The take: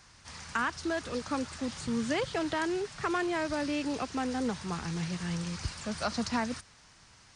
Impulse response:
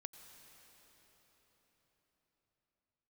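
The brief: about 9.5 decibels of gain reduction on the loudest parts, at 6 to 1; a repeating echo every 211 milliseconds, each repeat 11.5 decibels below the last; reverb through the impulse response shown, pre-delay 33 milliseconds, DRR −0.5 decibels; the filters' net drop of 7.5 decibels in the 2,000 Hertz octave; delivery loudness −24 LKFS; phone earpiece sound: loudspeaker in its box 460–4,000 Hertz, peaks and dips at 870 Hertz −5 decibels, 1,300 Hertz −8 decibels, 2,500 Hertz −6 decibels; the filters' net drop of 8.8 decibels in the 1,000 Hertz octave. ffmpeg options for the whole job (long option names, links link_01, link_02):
-filter_complex "[0:a]equalizer=frequency=1000:width_type=o:gain=-4.5,equalizer=frequency=2000:width_type=o:gain=-4,acompressor=threshold=-38dB:ratio=6,aecho=1:1:211|422|633:0.266|0.0718|0.0194,asplit=2[link_01][link_02];[1:a]atrim=start_sample=2205,adelay=33[link_03];[link_02][link_03]afir=irnorm=-1:irlink=0,volume=5.5dB[link_04];[link_01][link_04]amix=inputs=2:normalize=0,highpass=460,equalizer=frequency=870:width_type=q:width=4:gain=-5,equalizer=frequency=1300:width_type=q:width=4:gain=-8,equalizer=frequency=2500:width_type=q:width=4:gain=-6,lowpass=frequency=4000:width=0.5412,lowpass=frequency=4000:width=1.3066,volume=21dB"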